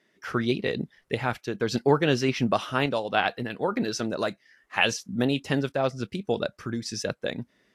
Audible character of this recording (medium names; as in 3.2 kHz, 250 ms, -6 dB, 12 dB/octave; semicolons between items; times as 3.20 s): random-step tremolo; Vorbis